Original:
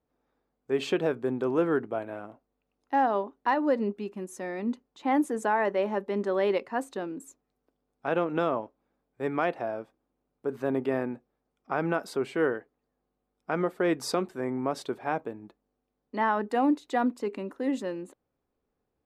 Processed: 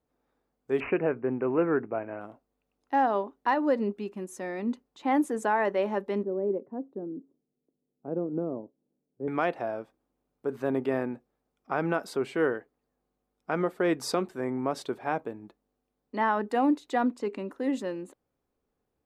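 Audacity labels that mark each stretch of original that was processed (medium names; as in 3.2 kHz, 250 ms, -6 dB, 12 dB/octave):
0.800000	2.210000	careless resampling rate divided by 8×, down none, up filtered
6.230000	9.280000	Butterworth band-pass 230 Hz, Q 0.72
16.950000	17.500000	low-pass 9.7 kHz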